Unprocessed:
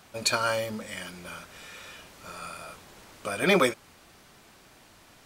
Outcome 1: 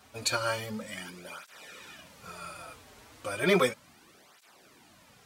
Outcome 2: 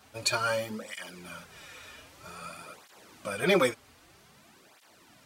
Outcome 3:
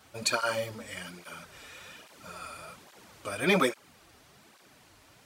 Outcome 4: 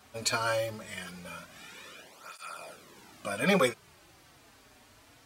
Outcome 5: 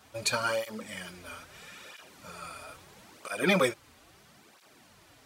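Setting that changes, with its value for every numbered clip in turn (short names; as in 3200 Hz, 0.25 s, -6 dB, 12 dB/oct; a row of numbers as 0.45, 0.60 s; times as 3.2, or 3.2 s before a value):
tape flanging out of phase, nulls at: 0.34, 0.52, 1.2, 0.21, 0.76 Hz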